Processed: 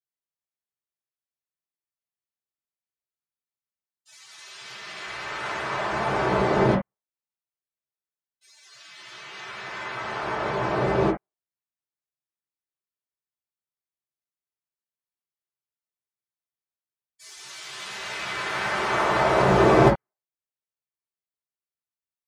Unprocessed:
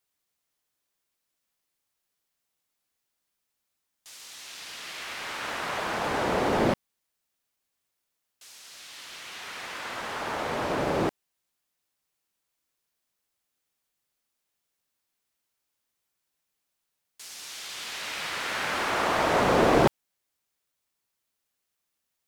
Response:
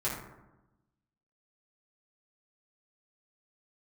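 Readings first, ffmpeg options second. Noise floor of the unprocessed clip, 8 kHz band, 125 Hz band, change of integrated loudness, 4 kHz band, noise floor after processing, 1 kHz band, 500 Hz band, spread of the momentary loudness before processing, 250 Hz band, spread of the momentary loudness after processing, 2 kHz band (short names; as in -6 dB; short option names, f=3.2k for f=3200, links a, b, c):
-82 dBFS, -2.5 dB, +8.0 dB, +4.0 dB, -0.5 dB, under -85 dBFS, +3.5 dB, +4.0 dB, 20 LU, +3.5 dB, 21 LU, +2.5 dB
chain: -filter_complex "[1:a]atrim=start_sample=2205,atrim=end_sample=3528[a];[0:a][a]afir=irnorm=-1:irlink=0,afftdn=nr=20:nf=-47,volume=-2.5dB"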